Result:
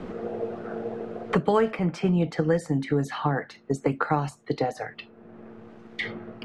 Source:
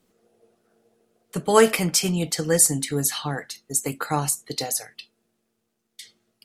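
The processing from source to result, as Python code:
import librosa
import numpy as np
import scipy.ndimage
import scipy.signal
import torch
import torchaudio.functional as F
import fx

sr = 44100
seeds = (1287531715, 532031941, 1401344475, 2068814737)

y = scipy.signal.sosfilt(scipy.signal.butter(2, 1600.0, 'lowpass', fs=sr, output='sos'), x)
y = fx.band_squash(y, sr, depth_pct=100)
y = F.gain(torch.from_numpy(y), 1.5).numpy()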